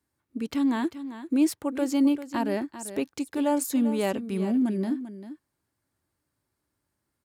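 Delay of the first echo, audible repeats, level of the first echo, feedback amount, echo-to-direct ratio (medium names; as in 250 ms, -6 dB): 394 ms, 1, -12.5 dB, no regular repeats, -12.5 dB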